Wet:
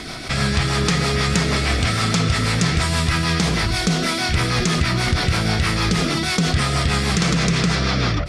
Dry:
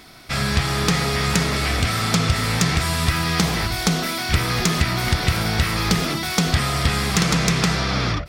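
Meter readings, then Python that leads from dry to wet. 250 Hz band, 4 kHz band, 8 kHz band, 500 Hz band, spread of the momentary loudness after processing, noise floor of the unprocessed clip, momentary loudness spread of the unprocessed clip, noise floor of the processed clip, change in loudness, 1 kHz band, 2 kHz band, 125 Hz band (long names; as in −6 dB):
+2.0 dB, +1.0 dB, −0.5 dB, +1.5 dB, 1 LU, −26 dBFS, 2 LU, −23 dBFS, +1.0 dB, 0.0 dB, +1.0 dB, +1.5 dB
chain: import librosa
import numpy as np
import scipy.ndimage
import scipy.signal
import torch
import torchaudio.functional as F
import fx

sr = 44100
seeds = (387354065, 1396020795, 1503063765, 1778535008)

y = fx.rotary(x, sr, hz=6.3)
y = scipy.signal.sosfilt(scipy.signal.butter(4, 10000.0, 'lowpass', fs=sr, output='sos'), y)
y = fx.env_flatten(y, sr, amount_pct=50)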